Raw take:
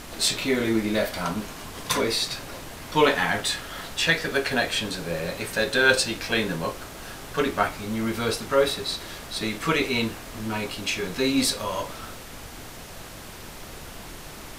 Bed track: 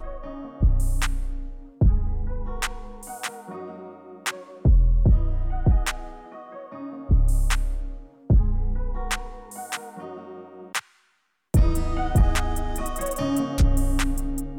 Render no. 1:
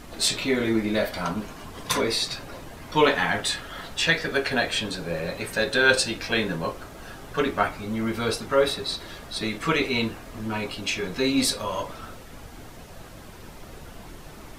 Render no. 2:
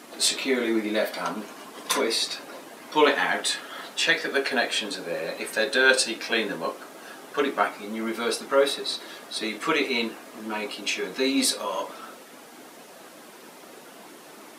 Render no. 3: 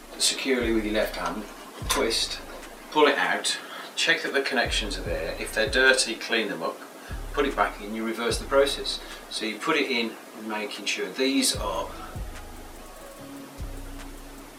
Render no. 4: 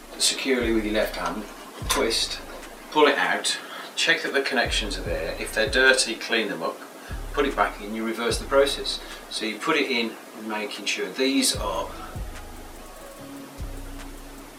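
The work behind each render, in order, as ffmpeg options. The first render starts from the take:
-af "afftdn=nr=8:nf=-41"
-af "highpass=f=240:w=0.5412,highpass=f=240:w=1.3066,equalizer=f=10k:t=o:w=0.56:g=3"
-filter_complex "[1:a]volume=-18dB[a];[0:a][a]amix=inputs=2:normalize=0"
-af "volume=1.5dB"

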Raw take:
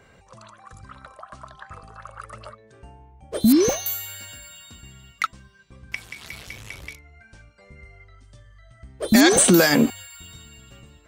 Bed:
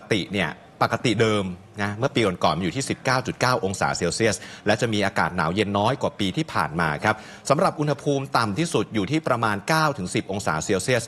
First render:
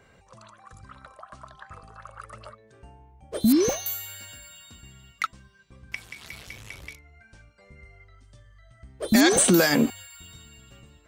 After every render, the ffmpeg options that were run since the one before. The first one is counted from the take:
-af "volume=-3.5dB"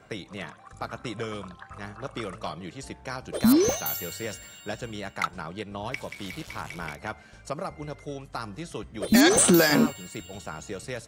-filter_complex "[1:a]volume=-14dB[a];[0:a][a]amix=inputs=2:normalize=0"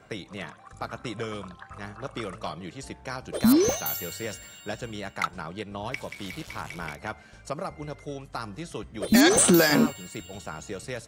-af anull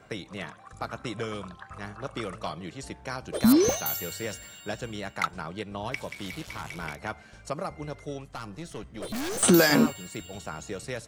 -filter_complex "[0:a]asettb=1/sr,asplit=3[a][b][c];[a]atrim=end=6.214[d];[b]atrim=start=6.21:end=6.83,asetpts=PTS-STARTPTS,afade=t=in:d=0.004:c=qsin,afade=t=out:st=0.616:d=0.004:c=qsin,asoftclip=type=hard:threshold=-28.5dB[e];[c]atrim=start=6.826[f];[d][e]acrossfade=d=0.004:c1=hsin:c2=qsin[g];[g][f]acrossfade=d=0.004:c1=qsin:c2=hsin,asettb=1/sr,asplit=3[h][i][j];[h]atrim=end=8.244[k];[i]atrim=start=8.24:end=9.43,asetpts=PTS-STARTPTS,afade=t=in:d=0.004:c=qsin,afade=t=out:st=1.186:d=0.004:c=qsin,aeval=exprs='(tanh(35.5*val(0)+0.45)-tanh(0.45))/35.5':c=same[l];[j]atrim=start=9.426[m];[k][l]acrossfade=d=0.004:c1=hsin:c2=qsin[n];[n][m]acrossfade=d=0.004:c1=qsin:c2=hsin"

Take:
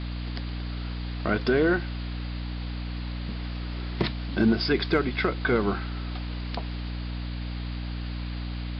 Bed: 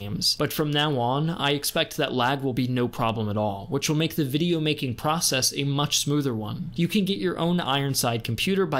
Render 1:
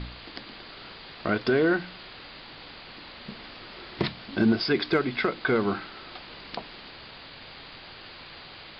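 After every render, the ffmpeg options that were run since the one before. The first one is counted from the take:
-af "bandreject=f=60:t=h:w=4,bandreject=f=120:t=h:w=4,bandreject=f=180:t=h:w=4,bandreject=f=240:t=h:w=4,bandreject=f=300:t=h:w=4"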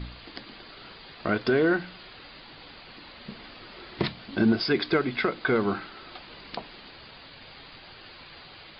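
-af "afftdn=nr=6:nf=-46"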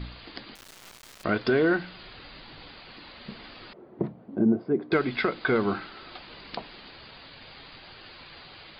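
-filter_complex "[0:a]asettb=1/sr,asplit=3[a][b][c];[a]atrim=end=0.554[d];[b]atrim=start=0.55:end=1.24,asetpts=PTS-STARTPTS,afade=t=in:d=0.004:c=qsin,afade=t=out:st=0.686:d=0.004:c=qsin,acrusher=bits=4:dc=4:mix=0:aa=0.000001[e];[c]atrim=start=1.236[f];[d][e]acrossfade=d=0.004:c1=hsin:c2=qsin[g];[g][f]acrossfade=d=0.004:c1=qsin:c2=hsin,asettb=1/sr,asplit=3[h][i][j];[h]atrim=end=1.974[k];[i]atrim=start=1.97:end=2.69,asetpts=PTS-STARTPTS,afade=t=in:d=0.004:c=qsin,afade=t=out:st=0.716:d=0.004:c=qsin,lowshelf=f=150:g=6.5[l];[j]atrim=start=2.686[m];[k][l]acrossfade=d=0.004:c1=hsin:c2=qsin[n];[n][m]acrossfade=d=0.004:c1=qsin:c2=hsin,asettb=1/sr,asplit=3[o][p][q];[o]atrim=end=3.734[r];[p]atrim=start=3.73:end=4.92,asetpts=PTS-STARTPTS,afade=t=in:d=0.004:c=qsin,afade=t=out:st=1.186:d=0.004:c=qsin,asuperpass=centerf=290:order=4:qfactor=0.57[s];[q]atrim=start=4.916[t];[r][s]acrossfade=d=0.004:c1=hsin:c2=qsin[u];[u][t]acrossfade=d=0.004:c1=qsin:c2=hsin"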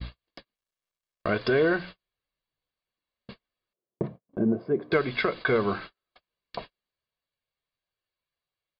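-af "agate=range=-45dB:threshold=-38dB:ratio=16:detection=peak,aecho=1:1:1.8:0.41"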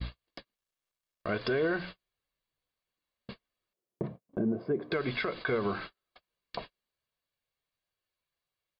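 -af "alimiter=limit=-21.5dB:level=0:latency=1:release=95"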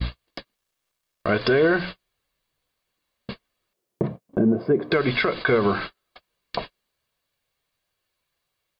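-af "volume=10.5dB"

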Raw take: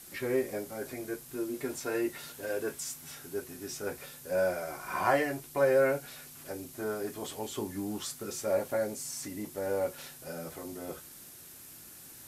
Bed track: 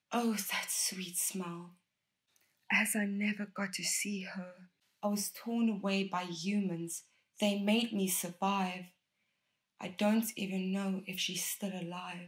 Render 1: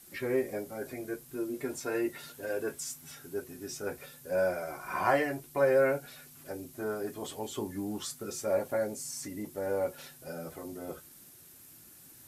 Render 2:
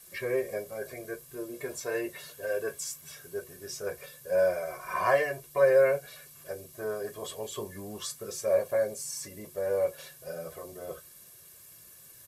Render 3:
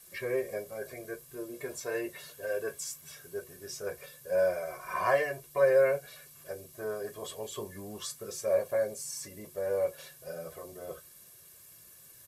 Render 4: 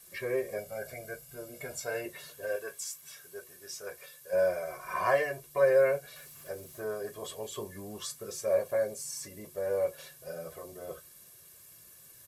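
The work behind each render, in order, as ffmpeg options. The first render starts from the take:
-af "afftdn=nr=6:nf=-50"
-af "lowshelf=f=220:g=-5,aecho=1:1:1.8:0.77"
-af "volume=-2dB"
-filter_complex "[0:a]asettb=1/sr,asplit=3[a][b][c];[a]atrim=end=0.584[d];[b]atrim=start=0.58:end=2.06,asetpts=PTS-STARTPTS,afade=t=in:d=0.004:c=qsin,afade=t=out:st=1.476:d=0.004:c=qsin,aecho=1:1:1.4:0.64,atrim=end_sample=65268[e];[c]atrim=start=2.056[f];[d][e]acrossfade=d=0.004:c1=hsin:c2=qsin[g];[g][f]acrossfade=d=0.004:c1=qsin:c2=hsin,asettb=1/sr,asplit=3[h][i][j];[h]atrim=end=2.564[k];[i]atrim=start=2.56:end=4.33,asetpts=PTS-STARTPTS,afade=t=in:d=0.004:c=qsin,afade=t=out:st=1.766:d=0.004:c=qsin,lowshelf=f=490:g=-11.5[l];[j]atrim=start=4.326[m];[k][l]acrossfade=d=0.004:c1=hsin:c2=qsin[n];[n][m]acrossfade=d=0.004:c1=qsin:c2=hsin,asettb=1/sr,asplit=3[o][p][q];[o]atrim=end=6.164[r];[p]atrim=start=6.16:end=6.82,asetpts=PTS-STARTPTS,afade=t=in:d=0.004:c=qsin,afade=t=out:st=0.656:d=0.004:c=qsin,aeval=exprs='val(0)+0.5*0.002*sgn(val(0))':c=same[s];[q]atrim=start=6.816[t];[r][s]acrossfade=d=0.004:c1=hsin:c2=qsin[u];[u][t]acrossfade=d=0.004:c1=qsin:c2=hsin"

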